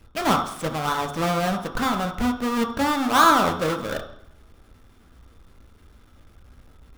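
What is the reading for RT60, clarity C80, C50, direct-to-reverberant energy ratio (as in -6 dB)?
0.70 s, 11.0 dB, 7.5 dB, 2.0 dB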